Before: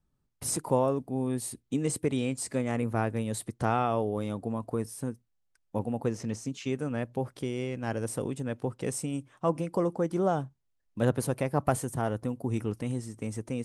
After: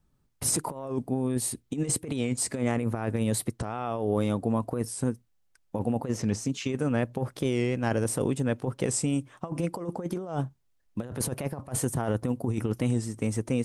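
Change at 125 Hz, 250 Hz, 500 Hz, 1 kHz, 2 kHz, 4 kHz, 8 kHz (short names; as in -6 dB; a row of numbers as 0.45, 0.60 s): +2.5, +2.5, -0.5, -3.0, +1.5, +5.0, +6.0 dB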